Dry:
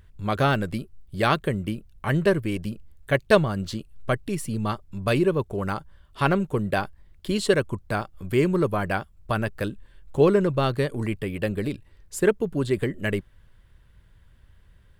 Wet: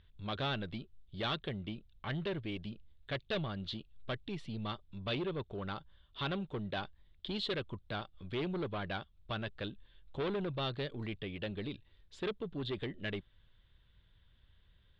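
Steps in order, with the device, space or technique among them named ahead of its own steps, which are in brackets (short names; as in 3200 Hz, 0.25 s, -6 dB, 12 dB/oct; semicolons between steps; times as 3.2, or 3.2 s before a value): overdriven synthesiser ladder filter (soft clip -20.5 dBFS, distortion -9 dB; ladder low-pass 3900 Hz, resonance 70%)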